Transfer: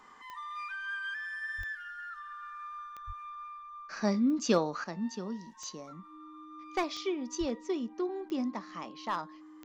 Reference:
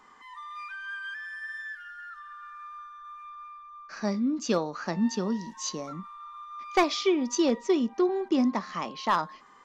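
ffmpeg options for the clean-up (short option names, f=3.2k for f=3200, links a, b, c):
-filter_complex "[0:a]adeclick=t=4,bandreject=f=310:w=30,asplit=3[a][b][c];[a]afade=t=out:st=1.57:d=0.02[d];[b]highpass=f=140:w=0.5412,highpass=f=140:w=1.3066,afade=t=in:st=1.57:d=0.02,afade=t=out:st=1.69:d=0.02[e];[c]afade=t=in:st=1.69:d=0.02[f];[d][e][f]amix=inputs=3:normalize=0,asplit=3[g][h][i];[g]afade=t=out:st=3.06:d=0.02[j];[h]highpass=f=140:w=0.5412,highpass=f=140:w=1.3066,afade=t=in:st=3.06:d=0.02,afade=t=out:st=3.18:d=0.02[k];[i]afade=t=in:st=3.18:d=0.02[l];[j][k][l]amix=inputs=3:normalize=0,asplit=3[m][n][o];[m]afade=t=out:st=7.39:d=0.02[p];[n]highpass=f=140:w=0.5412,highpass=f=140:w=1.3066,afade=t=in:st=7.39:d=0.02,afade=t=out:st=7.51:d=0.02[q];[o]afade=t=in:st=7.51:d=0.02[r];[p][q][r]amix=inputs=3:normalize=0,asetnsamples=n=441:p=0,asendcmd='4.84 volume volume 9dB',volume=0dB"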